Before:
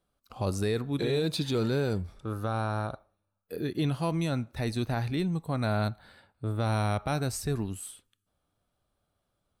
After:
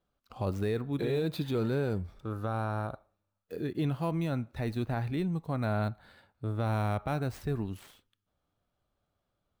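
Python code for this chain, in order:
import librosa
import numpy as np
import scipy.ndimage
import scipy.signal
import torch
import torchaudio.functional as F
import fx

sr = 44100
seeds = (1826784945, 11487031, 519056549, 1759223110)

y = scipy.ndimage.median_filter(x, 5, mode='constant')
y = fx.dynamic_eq(y, sr, hz=5300.0, q=0.86, threshold_db=-55.0, ratio=4.0, max_db=-8)
y = y * librosa.db_to_amplitude(-2.0)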